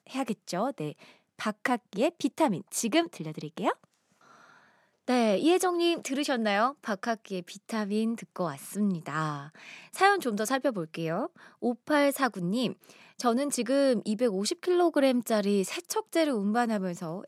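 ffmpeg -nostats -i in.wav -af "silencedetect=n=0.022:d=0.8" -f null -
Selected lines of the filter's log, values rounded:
silence_start: 3.72
silence_end: 5.08 | silence_duration: 1.35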